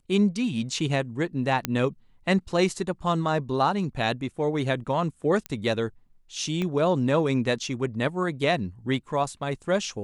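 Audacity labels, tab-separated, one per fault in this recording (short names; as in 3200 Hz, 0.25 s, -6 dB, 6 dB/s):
1.650000	1.650000	pop -8 dBFS
5.460000	5.460000	pop -16 dBFS
6.620000	6.620000	pop -17 dBFS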